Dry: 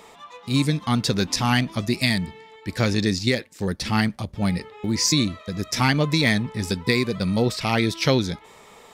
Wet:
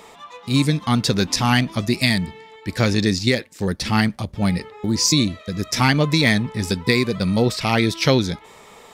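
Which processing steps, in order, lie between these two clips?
4.7–5.6 bell 3400 Hz -> 760 Hz -11.5 dB 0.39 oct; gain +3 dB

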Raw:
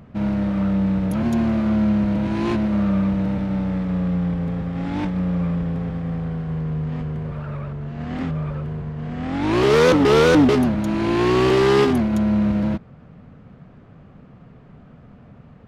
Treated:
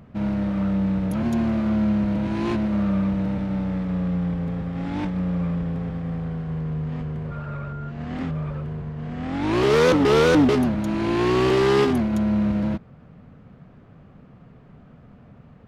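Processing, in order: 7.3–7.89 whine 1400 Hz -37 dBFS; gain -2.5 dB

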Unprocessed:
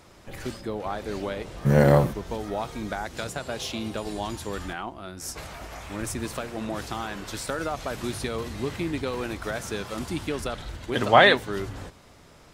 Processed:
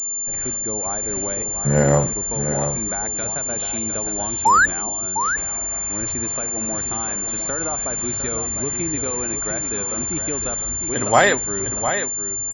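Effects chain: painted sound rise, 4.45–4.66, 820–1800 Hz -14 dBFS; echo 0.705 s -8.5 dB; pulse-width modulation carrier 7200 Hz; gain +1 dB

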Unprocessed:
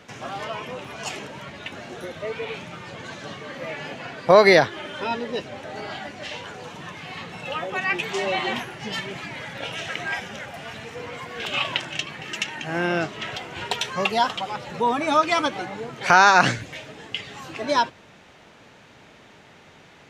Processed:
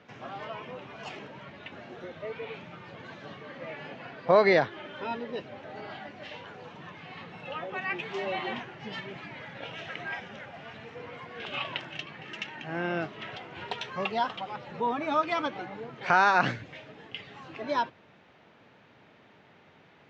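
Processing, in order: HPF 88 Hz; air absorption 200 m; pre-echo 30 ms -21 dB; gain -6.5 dB

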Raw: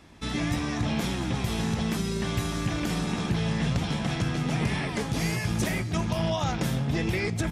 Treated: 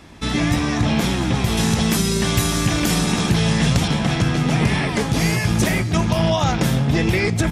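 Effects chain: 1.57–3.88 high shelf 5000 Hz +10 dB; gain +9 dB

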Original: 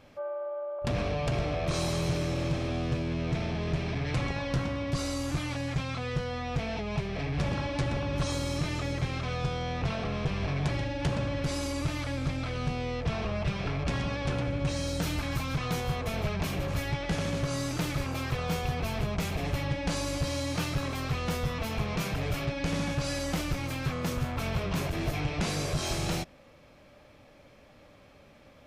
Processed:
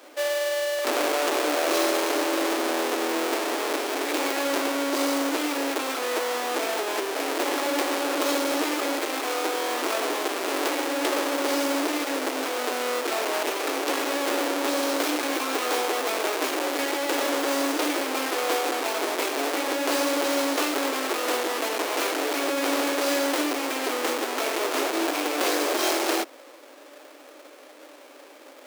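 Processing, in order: half-waves squared off; steep high-pass 280 Hz 72 dB/oct; gain +6 dB

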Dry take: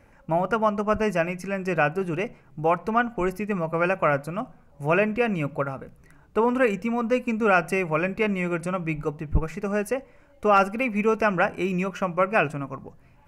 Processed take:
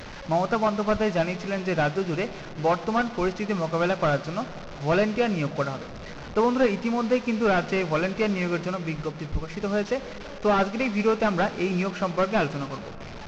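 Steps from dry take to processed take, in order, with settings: delta modulation 32 kbps, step -33.5 dBFS; 8.69–9.5 compressor 2:1, threshold -28 dBFS, peak gain reduction 7.5 dB; reverb RT60 5.6 s, pre-delay 31 ms, DRR 16 dB

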